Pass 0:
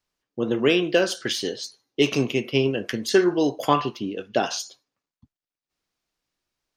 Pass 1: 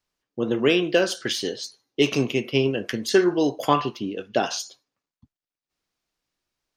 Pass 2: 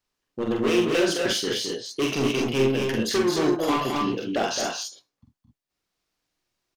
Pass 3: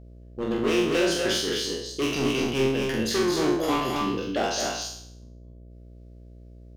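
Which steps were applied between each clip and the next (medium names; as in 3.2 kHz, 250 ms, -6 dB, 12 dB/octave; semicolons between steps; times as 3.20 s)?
no audible change
hard clipper -20.5 dBFS, distortion -7 dB; on a send: multi-tap echo 45/71/217/248/265 ms -3.5/-13.5/-6/-6.5/-5 dB; on the sum: trim -1 dB
spectral sustain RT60 0.65 s; mains buzz 60 Hz, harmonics 11, -43 dBFS -7 dB/octave; trim -3 dB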